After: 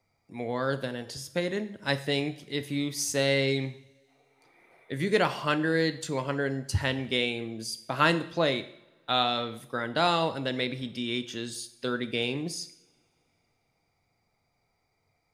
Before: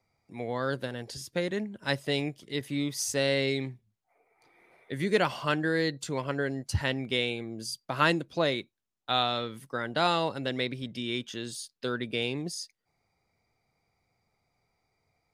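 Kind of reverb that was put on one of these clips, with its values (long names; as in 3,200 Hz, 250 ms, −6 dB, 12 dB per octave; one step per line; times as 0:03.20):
coupled-rooms reverb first 0.66 s, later 3.2 s, from −27 dB, DRR 10.5 dB
level +1 dB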